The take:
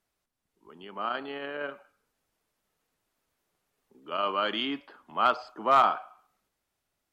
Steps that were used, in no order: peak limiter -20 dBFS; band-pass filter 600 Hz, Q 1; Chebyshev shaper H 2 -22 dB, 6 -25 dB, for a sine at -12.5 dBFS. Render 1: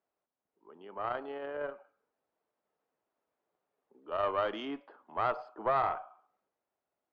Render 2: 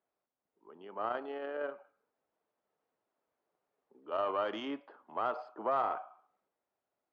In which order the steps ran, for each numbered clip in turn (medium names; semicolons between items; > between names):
band-pass filter > peak limiter > Chebyshev shaper; peak limiter > Chebyshev shaper > band-pass filter